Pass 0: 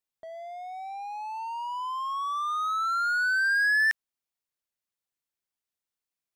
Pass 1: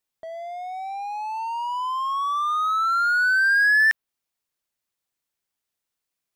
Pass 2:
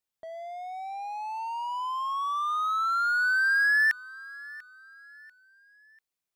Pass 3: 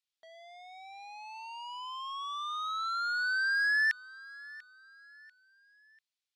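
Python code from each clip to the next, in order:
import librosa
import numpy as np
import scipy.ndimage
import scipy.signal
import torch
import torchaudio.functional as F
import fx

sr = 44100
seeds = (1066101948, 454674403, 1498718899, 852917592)

y1 = fx.dynamic_eq(x, sr, hz=6900.0, q=0.92, threshold_db=-48.0, ratio=4.0, max_db=-5)
y1 = y1 * 10.0 ** (6.0 / 20.0)
y2 = fx.echo_feedback(y1, sr, ms=692, feedback_pct=39, wet_db=-20)
y2 = y2 * 10.0 ** (-5.0 / 20.0)
y3 = fx.bandpass_q(y2, sr, hz=3700.0, q=1.4)
y3 = y3 * 10.0 ** (3.5 / 20.0)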